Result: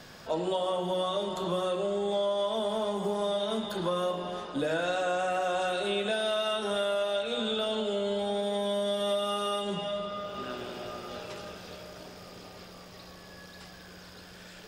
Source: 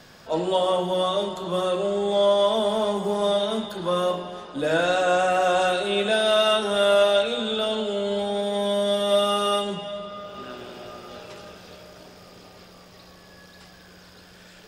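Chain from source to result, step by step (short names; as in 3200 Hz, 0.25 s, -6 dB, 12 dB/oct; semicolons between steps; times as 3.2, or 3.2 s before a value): compressor, threshold -27 dBFS, peak gain reduction 12 dB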